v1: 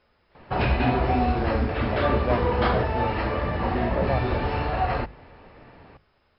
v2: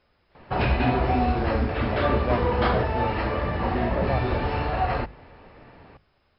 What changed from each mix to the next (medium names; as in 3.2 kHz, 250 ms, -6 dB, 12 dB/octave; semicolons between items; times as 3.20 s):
reverb: off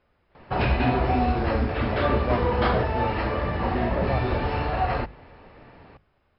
speech: add distance through air 260 m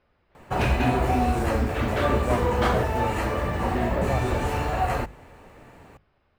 master: remove brick-wall FIR low-pass 5.4 kHz